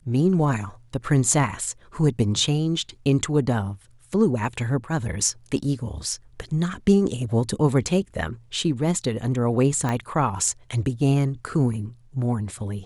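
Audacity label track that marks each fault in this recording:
9.890000	9.890000	pop -13 dBFS

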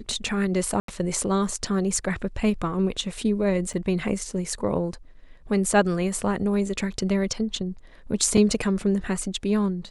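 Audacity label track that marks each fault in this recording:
0.800000	0.880000	gap 83 ms
3.730000	3.740000	gap 6.1 ms
8.370000	8.370000	gap 4.9 ms

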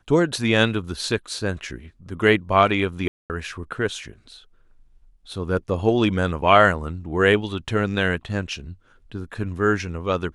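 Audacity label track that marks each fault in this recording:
3.080000	3.300000	gap 0.218 s

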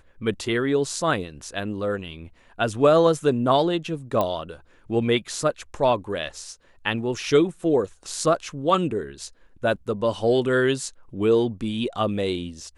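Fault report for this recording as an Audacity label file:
4.210000	4.210000	pop -11 dBFS

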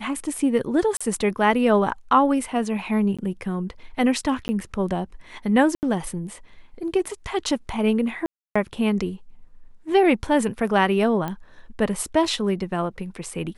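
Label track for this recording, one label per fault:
0.970000	1.000000	gap 35 ms
3.170000	3.190000	gap 16 ms
4.480000	4.490000	gap 10 ms
5.750000	5.830000	gap 79 ms
8.260000	8.550000	gap 0.295 s
11.280000	11.280000	pop -16 dBFS

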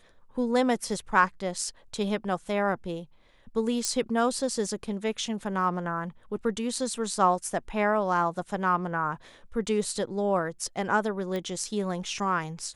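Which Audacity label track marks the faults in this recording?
3.850000	3.850000	pop -13 dBFS
11.360000	11.360000	pop -20 dBFS

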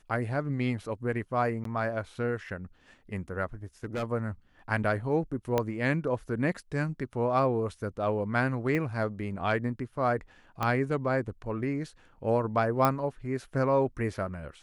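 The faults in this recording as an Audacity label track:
1.640000	1.650000	gap 13 ms
3.830000	4.040000	clipped -28.5 dBFS
5.580000	5.580000	pop -13 dBFS
8.750000	8.750000	pop -19 dBFS
10.630000	10.630000	pop -15 dBFS
12.850000	12.850000	pop -11 dBFS

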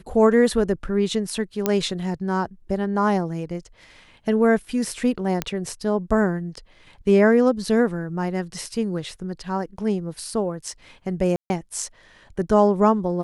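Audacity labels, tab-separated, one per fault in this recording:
1.660000	1.660000	pop -6 dBFS
5.420000	5.420000	pop -8 dBFS
11.360000	11.500000	gap 0.14 s

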